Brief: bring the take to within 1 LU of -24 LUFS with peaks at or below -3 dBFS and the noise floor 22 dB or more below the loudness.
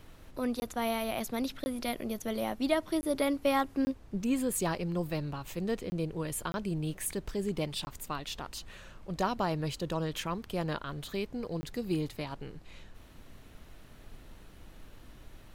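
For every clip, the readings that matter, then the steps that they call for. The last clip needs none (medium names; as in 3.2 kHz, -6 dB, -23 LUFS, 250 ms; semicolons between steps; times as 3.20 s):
dropouts 8; longest dropout 20 ms; noise floor -53 dBFS; noise floor target -56 dBFS; loudness -34.0 LUFS; peak level -16.0 dBFS; loudness target -24.0 LUFS
-> interpolate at 0.60/1.64/3.01/3.85/5.90/6.52/7.85/11.61 s, 20 ms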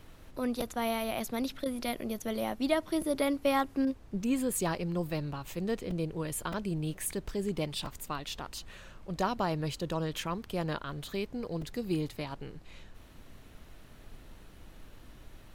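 dropouts 0; noise floor -53 dBFS; noise floor target -56 dBFS
-> noise print and reduce 6 dB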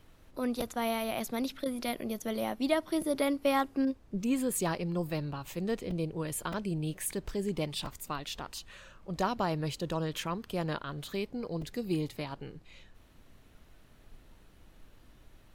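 noise floor -59 dBFS; loudness -34.0 LUFS; peak level -16.0 dBFS; loudness target -24.0 LUFS
-> trim +10 dB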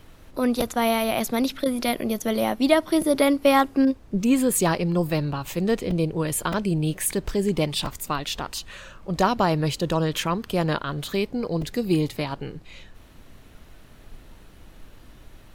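loudness -24.0 LUFS; peak level -6.0 dBFS; noise floor -49 dBFS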